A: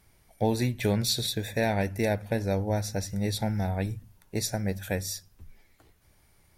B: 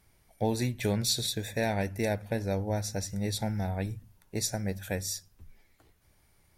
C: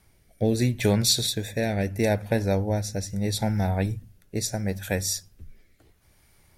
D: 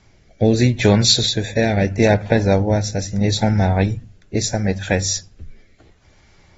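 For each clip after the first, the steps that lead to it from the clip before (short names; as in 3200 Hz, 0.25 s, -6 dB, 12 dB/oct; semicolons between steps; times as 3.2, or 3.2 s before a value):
dynamic EQ 7300 Hz, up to +5 dB, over -47 dBFS, Q 1.2; gain -3 dB
rotary speaker horn 0.75 Hz; gain +7.5 dB
gain +8 dB; AAC 24 kbps 44100 Hz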